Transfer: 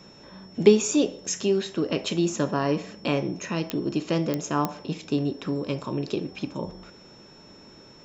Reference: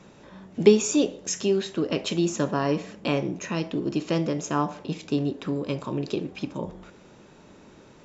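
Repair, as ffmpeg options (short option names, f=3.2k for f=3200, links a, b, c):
-af "adeclick=t=4,bandreject=f=5.4k:w=30"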